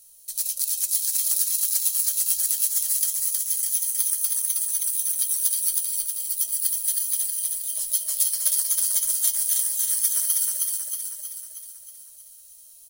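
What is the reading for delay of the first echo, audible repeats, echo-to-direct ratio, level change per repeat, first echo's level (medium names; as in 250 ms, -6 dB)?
317 ms, 7, -1.5 dB, -5.0 dB, -3.0 dB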